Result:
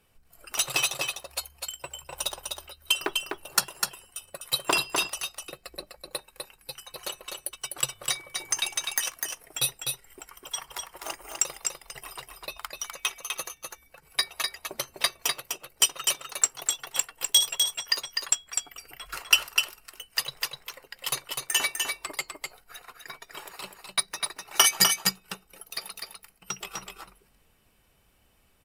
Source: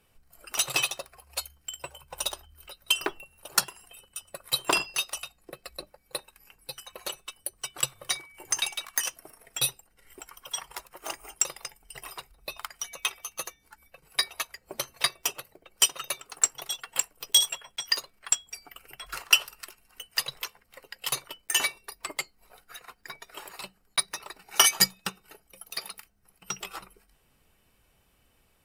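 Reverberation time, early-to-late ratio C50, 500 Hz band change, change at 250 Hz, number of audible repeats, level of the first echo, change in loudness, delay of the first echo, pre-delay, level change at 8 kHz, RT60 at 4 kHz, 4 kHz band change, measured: no reverb audible, no reverb audible, +1.5 dB, +1.5 dB, 1, −4.5 dB, +1.0 dB, 251 ms, no reverb audible, +1.5 dB, no reverb audible, +1.5 dB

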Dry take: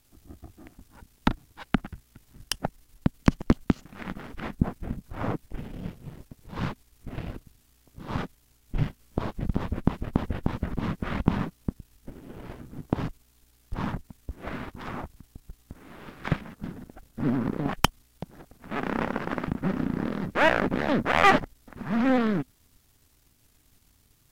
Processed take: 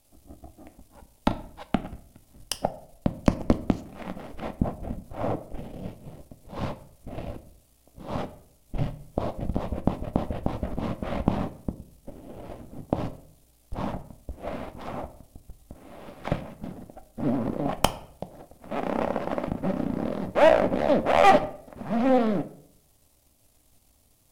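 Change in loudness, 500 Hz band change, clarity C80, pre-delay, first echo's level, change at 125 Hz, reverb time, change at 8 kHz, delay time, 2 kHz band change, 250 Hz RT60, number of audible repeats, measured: +1.0 dB, +6.0 dB, 19.0 dB, 4 ms, no echo audible, −2.0 dB, 0.60 s, +1.0 dB, no echo audible, −5.0 dB, 0.65 s, no echo audible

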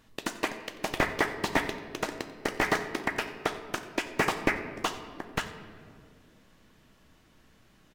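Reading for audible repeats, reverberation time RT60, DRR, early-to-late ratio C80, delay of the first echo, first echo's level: 1, 2.3 s, 7.5 dB, 11.0 dB, 90 ms, −19.5 dB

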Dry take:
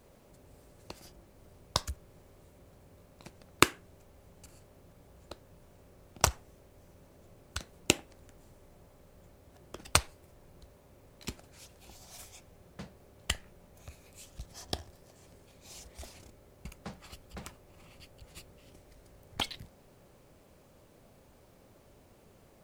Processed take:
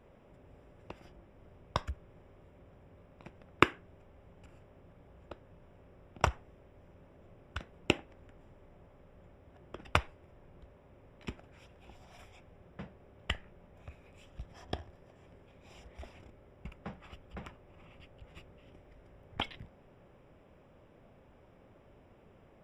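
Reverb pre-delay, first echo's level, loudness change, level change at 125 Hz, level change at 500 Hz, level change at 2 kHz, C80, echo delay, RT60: no reverb audible, no echo audible, −3.5 dB, 0.0 dB, 0.0 dB, −0.5 dB, no reverb audible, no echo audible, no reverb audible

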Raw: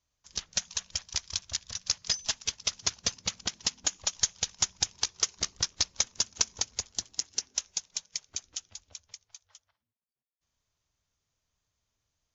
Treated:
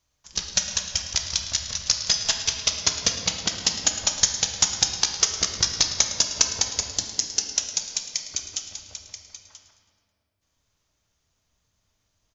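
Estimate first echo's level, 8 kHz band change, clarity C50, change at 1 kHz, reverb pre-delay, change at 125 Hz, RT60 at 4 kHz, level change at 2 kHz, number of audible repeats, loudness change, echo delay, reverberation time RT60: −14.5 dB, can't be measured, 5.0 dB, +8.5 dB, 3 ms, +9.0 dB, 1.4 s, +8.5 dB, 1, +8.0 dB, 108 ms, 2.5 s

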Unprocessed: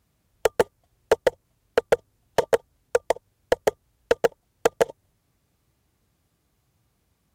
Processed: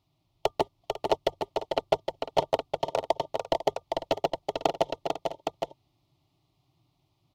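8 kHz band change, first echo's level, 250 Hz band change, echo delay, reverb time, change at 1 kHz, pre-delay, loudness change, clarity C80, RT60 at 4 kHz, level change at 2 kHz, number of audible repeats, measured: −9.5 dB, −5.0 dB, 0.0 dB, 446 ms, no reverb audible, +1.0 dB, no reverb audible, −5.0 dB, no reverb audible, no reverb audible, −10.0 dB, 3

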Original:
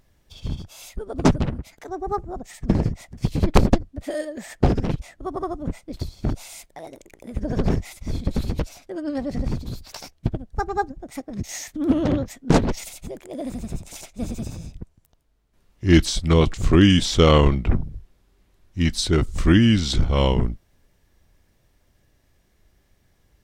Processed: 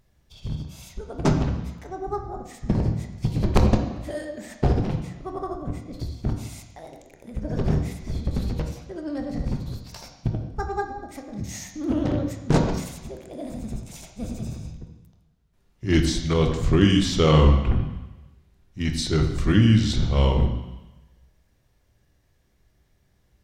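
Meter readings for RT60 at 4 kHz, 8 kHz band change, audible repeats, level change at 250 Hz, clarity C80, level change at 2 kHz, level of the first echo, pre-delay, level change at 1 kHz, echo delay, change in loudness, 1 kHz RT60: 1.1 s, −4.0 dB, no echo audible, −2.5 dB, 8.5 dB, −3.5 dB, no echo audible, 9 ms, −3.0 dB, no echo audible, −2.0 dB, 1.2 s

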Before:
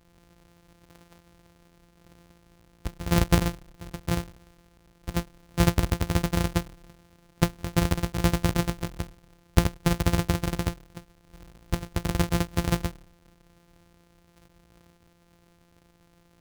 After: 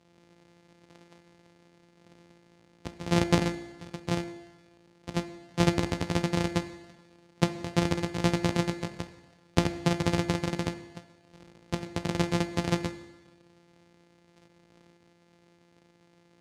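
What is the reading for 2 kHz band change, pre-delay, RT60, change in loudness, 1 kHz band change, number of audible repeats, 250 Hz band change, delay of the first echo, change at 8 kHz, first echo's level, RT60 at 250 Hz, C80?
−1.0 dB, 14 ms, 1.2 s, −2.5 dB, −1.0 dB, no echo audible, −1.0 dB, no echo audible, −4.5 dB, no echo audible, 1.2 s, 14.5 dB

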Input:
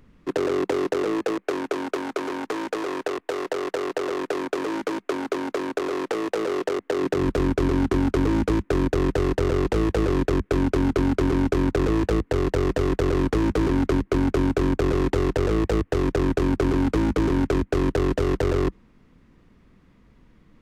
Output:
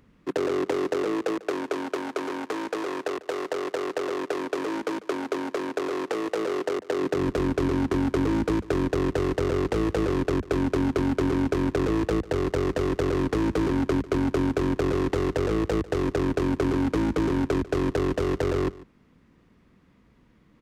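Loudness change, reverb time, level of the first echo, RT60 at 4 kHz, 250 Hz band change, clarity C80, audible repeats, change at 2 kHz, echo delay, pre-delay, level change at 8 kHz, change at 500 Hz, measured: −2.5 dB, no reverb audible, −19.5 dB, no reverb audible, −2.0 dB, no reverb audible, 1, −2.0 dB, 146 ms, no reverb audible, −2.0 dB, −2.0 dB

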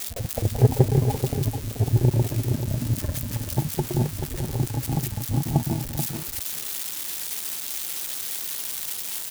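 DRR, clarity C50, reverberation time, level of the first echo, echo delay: no reverb audible, no reverb audible, no reverb audible, −7.5 dB, 434 ms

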